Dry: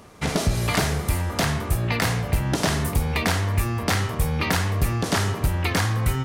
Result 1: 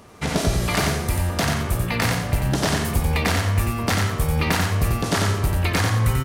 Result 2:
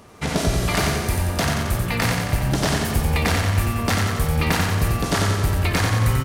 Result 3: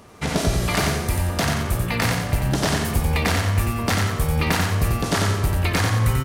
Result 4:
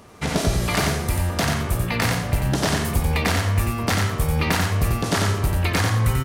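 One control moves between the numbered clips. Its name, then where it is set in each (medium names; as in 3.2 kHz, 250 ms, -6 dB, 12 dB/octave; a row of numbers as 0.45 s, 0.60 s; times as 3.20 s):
feedback delay, feedback: 27%, 62%, 41%, 18%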